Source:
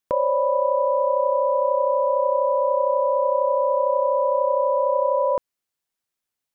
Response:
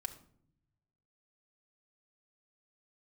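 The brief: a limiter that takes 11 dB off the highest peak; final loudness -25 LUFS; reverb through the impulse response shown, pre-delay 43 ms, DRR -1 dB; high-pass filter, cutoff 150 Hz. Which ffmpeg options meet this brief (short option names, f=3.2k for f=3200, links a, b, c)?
-filter_complex "[0:a]highpass=150,alimiter=limit=-22dB:level=0:latency=1,asplit=2[a][b];[1:a]atrim=start_sample=2205,adelay=43[c];[b][c]afir=irnorm=-1:irlink=0,volume=2.5dB[d];[a][d]amix=inputs=2:normalize=0,volume=3dB"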